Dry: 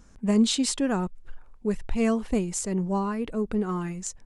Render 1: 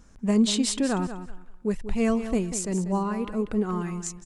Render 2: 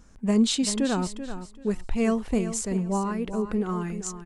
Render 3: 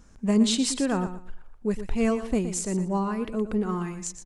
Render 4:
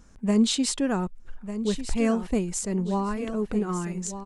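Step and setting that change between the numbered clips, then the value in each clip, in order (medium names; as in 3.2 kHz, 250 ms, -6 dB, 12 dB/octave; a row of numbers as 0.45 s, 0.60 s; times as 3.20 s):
feedback delay, time: 190 ms, 386 ms, 118 ms, 1198 ms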